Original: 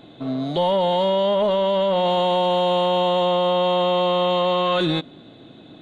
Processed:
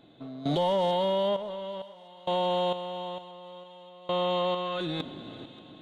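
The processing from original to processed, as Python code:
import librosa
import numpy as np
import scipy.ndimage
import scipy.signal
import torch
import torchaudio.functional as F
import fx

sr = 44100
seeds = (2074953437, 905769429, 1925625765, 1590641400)

p1 = fx.over_compress(x, sr, threshold_db=-28.0, ratio=-1.0)
p2 = x + (p1 * librosa.db_to_amplitude(0.0))
p3 = fx.tremolo_random(p2, sr, seeds[0], hz=2.2, depth_pct=95)
p4 = np.clip(p3, -10.0 ** (-11.0 / 20.0), 10.0 ** (-11.0 / 20.0))
p5 = fx.echo_thinned(p4, sr, ms=582, feedback_pct=71, hz=1000.0, wet_db=-19)
y = p5 * librosa.db_to_amplitude(-8.5)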